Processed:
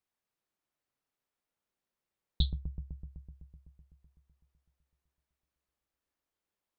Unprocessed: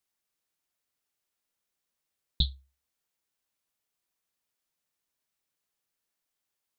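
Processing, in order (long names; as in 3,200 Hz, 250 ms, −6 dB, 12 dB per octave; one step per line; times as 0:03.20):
high-shelf EQ 3,100 Hz −11 dB
bucket-brigade delay 126 ms, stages 1,024, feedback 76%, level −7 dB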